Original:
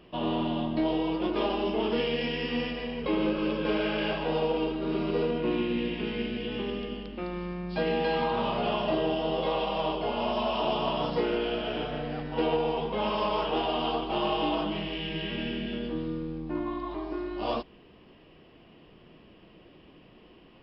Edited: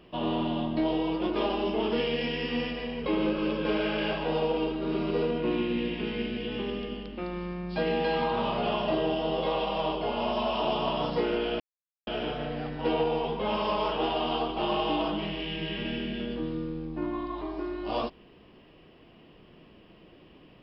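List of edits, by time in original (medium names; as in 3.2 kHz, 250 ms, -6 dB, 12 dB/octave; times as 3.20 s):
11.60 s: insert silence 0.47 s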